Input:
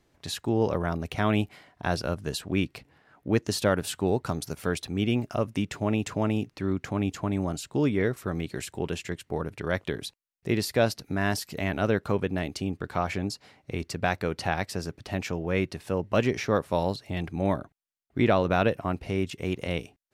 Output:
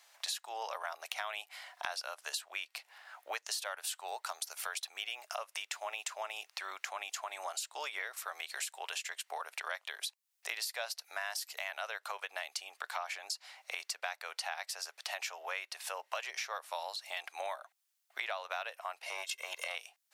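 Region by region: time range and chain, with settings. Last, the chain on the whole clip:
0:19.06–0:19.75: comb filter 1.9 ms, depth 81% + saturating transformer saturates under 490 Hz
whole clip: Butterworth high-pass 670 Hz 36 dB per octave; high-shelf EQ 2,500 Hz +9 dB; downward compressor 6 to 1, threshold −42 dBFS; level +5 dB

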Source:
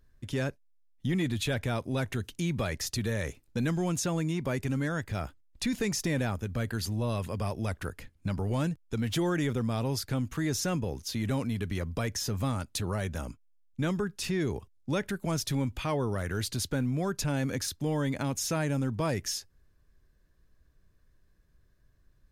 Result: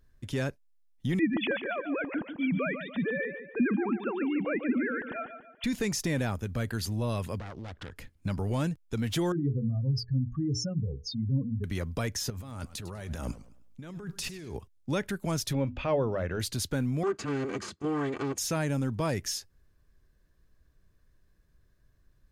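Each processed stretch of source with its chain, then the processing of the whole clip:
0:01.19–0:05.64: three sine waves on the formant tracks + repeating echo 144 ms, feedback 42%, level −9 dB + one half of a high-frequency compander decoder only
0:07.39–0:07.96: phase distortion by the signal itself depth 0.65 ms + low-pass filter 4,400 Hz + downward compressor 4 to 1, threshold −37 dBFS
0:09.32–0:11.64: expanding power law on the bin magnitudes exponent 3.3 + mains-hum notches 60/120/180/240/300/360/420/480 Hz + dynamic equaliser 130 Hz, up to +5 dB, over −44 dBFS, Q 3.5
0:12.30–0:14.56: compressor whose output falls as the input rises −39 dBFS + feedback echo with a swinging delay time 103 ms, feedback 35%, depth 170 cents, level −15.5 dB
0:15.53–0:16.40: high-frequency loss of the air 210 metres + mains-hum notches 50/100/150/200/250/300 Hz + hollow resonant body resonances 560/2,600 Hz, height 9 dB, ringing for 20 ms
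0:17.03–0:18.38: lower of the sound and its delayed copy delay 2.6 ms + loudspeaker in its box 110–7,000 Hz, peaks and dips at 200 Hz +8 dB, 370 Hz +5 dB, 760 Hz −5 dB, 1,200 Hz +5 dB, 3,700 Hz −6 dB, 5,600 Hz −8 dB
whole clip: no processing

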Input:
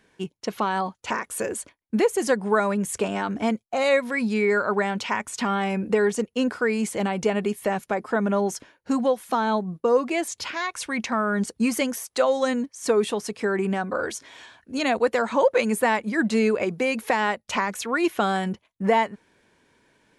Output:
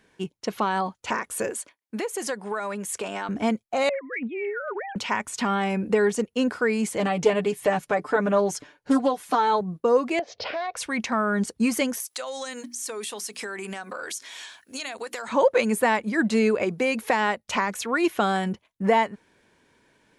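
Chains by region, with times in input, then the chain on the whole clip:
0:01.50–0:03.29: high-pass filter 560 Hz 6 dB per octave + downward compressor 4 to 1, threshold −25 dBFS
0:03.89–0:04.96: three sine waves on the formant tracks + downward compressor, threshold −27 dBFS + highs frequency-modulated by the lows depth 0.11 ms
0:06.98–0:09.61: low-pass filter 11,000 Hz + comb filter 6.8 ms, depth 77% + highs frequency-modulated by the lows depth 0.17 ms
0:10.19–0:10.77: Butterworth low-pass 5,300 Hz 48 dB per octave + flat-topped bell 570 Hz +15.5 dB 1 octave + downward compressor 4 to 1, threshold −27 dBFS
0:12.00–0:15.28: spectral tilt +4 dB per octave + mains-hum notches 60/120/180/240/300/360 Hz + downward compressor, threshold −30 dBFS
whole clip: no processing

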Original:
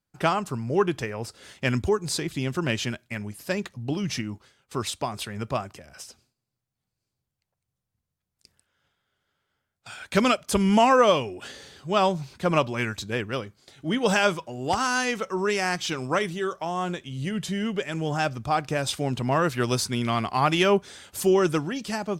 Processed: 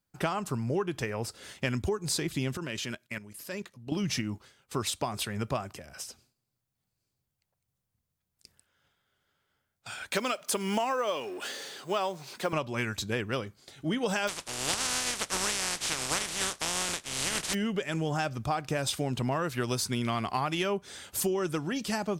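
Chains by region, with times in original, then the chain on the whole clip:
0:02.57–0:03.92: low-shelf EQ 160 Hz −9 dB + notch filter 770 Hz, Q 5.8 + output level in coarse steps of 12 dB
0:10.12–0:12.53: mu-law and A-law mismatch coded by mu + high-pass filter 330 Hz
0:14.27–0:17.53: compressing power law on the bin magnitudes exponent 0.19 + low-pass filter 9,300 Hz 24 dB per octave
whole clip: high-shelf EQ 11,000 Hz +6.5 dB; downward compressor 10 to 1, threshold −26 dBFS

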